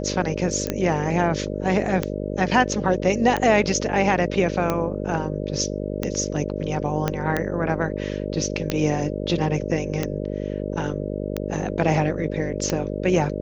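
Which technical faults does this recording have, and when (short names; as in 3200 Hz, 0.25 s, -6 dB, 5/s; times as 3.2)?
buzz 50 Hz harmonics 12 -28 dBFS
tick 45 rpm -9 dBFS
0.67 pop -12 dBFS
7.08 pop -8 dBFS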